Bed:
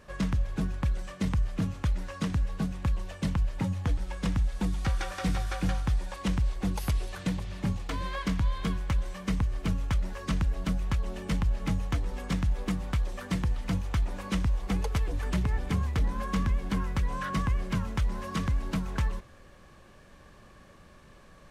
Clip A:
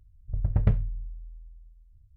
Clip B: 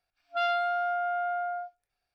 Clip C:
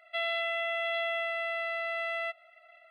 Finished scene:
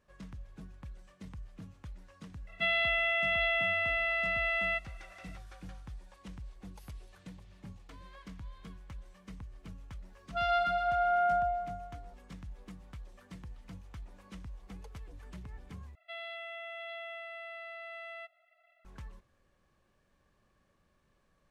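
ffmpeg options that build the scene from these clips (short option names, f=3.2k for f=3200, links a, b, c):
-filter_complex "[3:a]asplit=2[a][b];[0:a]volume=-18.5dB[c];[a]equalizer=f=2.4k:w=1.9:g=7.5[d];[2:a]aecho=1:1:122|244|366|488|610|732|854|976:0.562|0.332|0.196|0.115|0.0681|0.0402|0.0237|0.014[e];[c]asplit=2[f][g];[f]atrim=end=15.954[h];[b]atrim=end=2.9,asetpts=PTS-STARTPTS,volume=-11.5dB[i];[g]atrim=start=18.846[j];[d]atrim=end=2.9,asetpts=PTS-STARTPTS,volume=-1.5dB,afade=t=in:d=0.004:c=hsin,afade=t=out:st=2.896:d=0.004:c=hsin,adelay=2470[k];[e]atrim=end=2.14,asetpts=PTS-STARTPTS,volume=-4dB,afade=t=in:d=0.004:c=hsin,afade=t=out:st=2.136:d=0.004:c=hsin,adelay=10000[l];[h][i]acrossfade=d=0.004:c1=hsin:c2=hsin[m];[m][j]acrossfade=d=0.004:c1=hsin:c2=hsin[n];[n][k][l]amix=inputs=3:normalize=0"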